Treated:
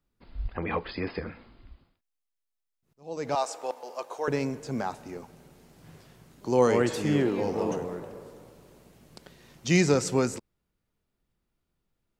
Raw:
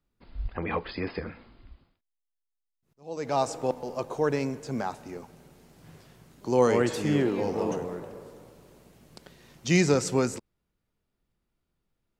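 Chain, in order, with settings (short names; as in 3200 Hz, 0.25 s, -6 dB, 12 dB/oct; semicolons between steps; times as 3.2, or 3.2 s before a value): 3.35–4.28 HPF 640 Hz 12 dB/oct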